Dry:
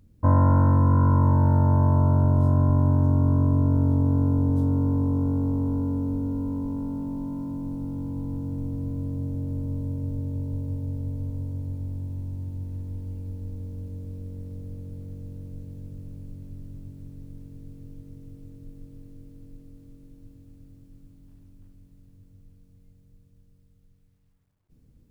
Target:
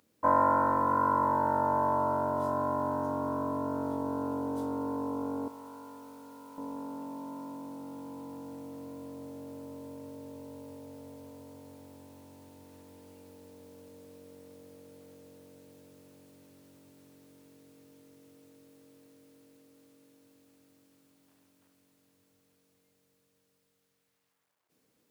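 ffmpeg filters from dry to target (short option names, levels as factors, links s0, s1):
-af "asetnsamples=n=441:p=0,asendcmd='5.48 highpass f 1300;6.58 highpass f 630',highpass=590,volume=1.68"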